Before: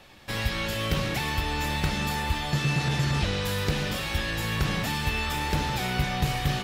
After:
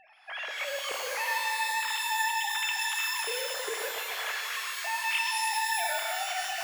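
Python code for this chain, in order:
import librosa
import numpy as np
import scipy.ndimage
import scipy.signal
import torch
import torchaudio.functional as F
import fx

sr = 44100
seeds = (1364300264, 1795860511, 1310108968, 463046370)

y = fx.sine_speech(x, sr)
y = fx.rev_shimmer(y, sr, seeds[0], rt60_s=2.2, semitones=12, shimmer_db=-2, drr_db=3.0)
y = y * 10.0 ** (-7.5 / 20.0)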